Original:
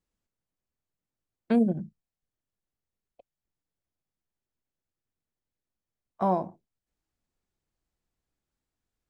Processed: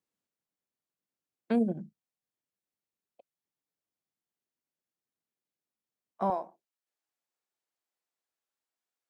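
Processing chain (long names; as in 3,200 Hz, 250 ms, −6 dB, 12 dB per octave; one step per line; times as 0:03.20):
high-pass filter 180 Hz 12 dB per octave, from 0:06.30 550 Hz
level −3 dB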